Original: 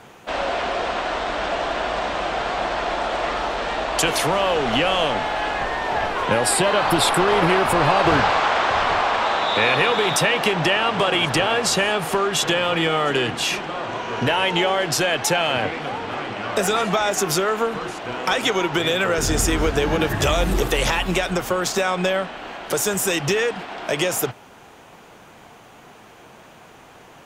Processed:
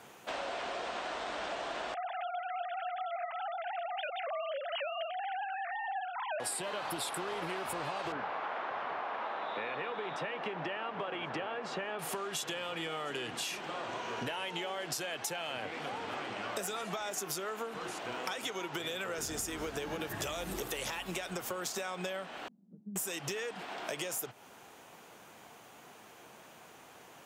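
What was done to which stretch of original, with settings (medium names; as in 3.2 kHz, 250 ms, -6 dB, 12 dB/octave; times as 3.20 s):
1.94–6.40 s: formants replaced by sine waves
8.12–11.99 s: band-pass 150–2000 Hz
22.48–22.96 s: Butterworth band-pass 200 Hz, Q 3.9
whole clip: high-pass 170 Hz 6 dB/octave; treble shelf 7 kHz +9.5 dB; compression, threshold -26 dBFS; trim -9 dB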